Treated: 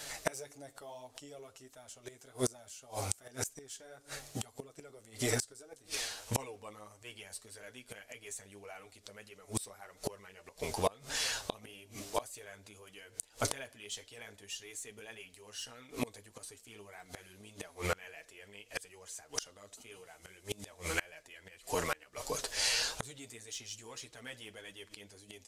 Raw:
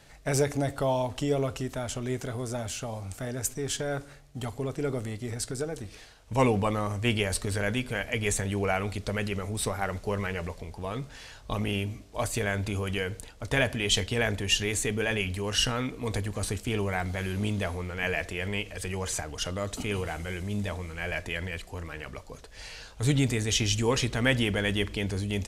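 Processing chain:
bass and treble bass −13 dB, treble +9 dB
in parallel at −6 dB: soft clipping −21 dBFS, distortion −11 dB
on the sum: flanger 1.7 Hz, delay 6.2 ms, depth 4.2 ms, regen −8%
gate with flip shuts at −26 dBFS, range −29 dB
level +8.5 dB

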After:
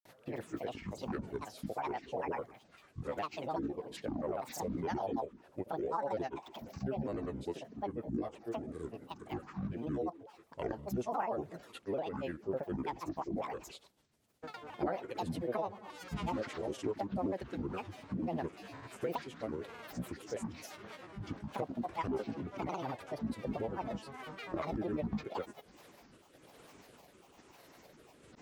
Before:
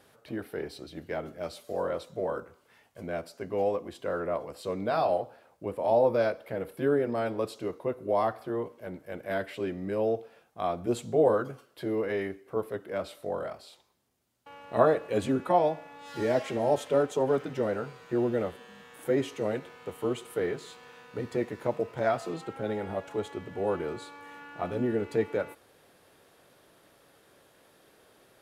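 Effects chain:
pitch shifter swept by a sawtooth −4 semitones, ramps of 444 ms
rotating-speaker cabinet horn 6 Hz, later 1.1 Hz, at 0:24.88
downward compressor 3 to 1, threshold −42 dBFS, peak gain reduction 17 dB
granular cloud, pitch spread up and down by 12 semitones
level +6 dB

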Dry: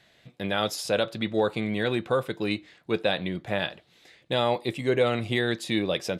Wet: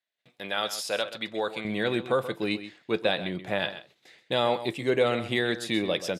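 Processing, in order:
noise gate −56 dBFS, range −28 dB
high-pass filter 800 Hz 6 dB per octave, from 0:01.65 170 Hz
single-tap delay 130 ms −13 dB

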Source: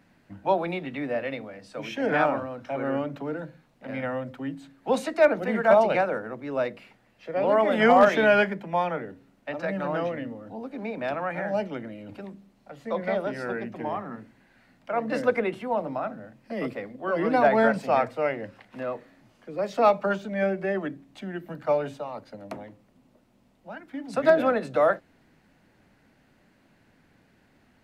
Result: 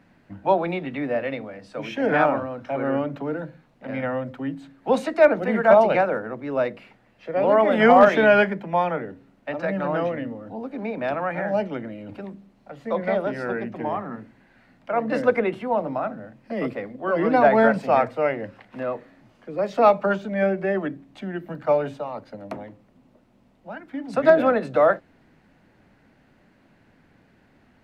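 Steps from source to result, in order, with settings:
high-shelf EQ 4,400 Hz −9 dB
level +4 dB

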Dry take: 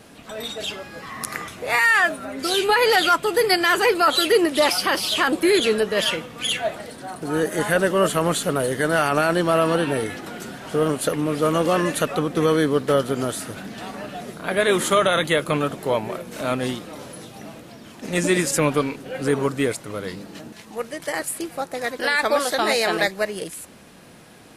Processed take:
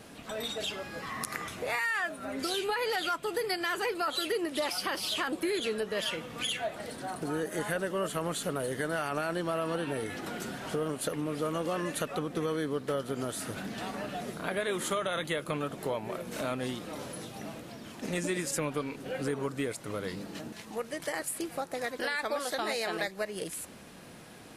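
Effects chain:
downward compressor 3 to 1, threshold −29 dBFS, peak gain reduction 12.5 dB
level −3 dB

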